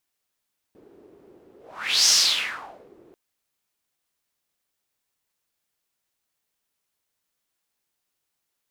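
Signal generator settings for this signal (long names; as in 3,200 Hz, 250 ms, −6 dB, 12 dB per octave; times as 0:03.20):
pass-by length 2.39 s, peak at 0:01.34, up 0.55 s, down 0.90 s, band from 370 Hz, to 5,600 Hz, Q 4.6, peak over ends 35 dB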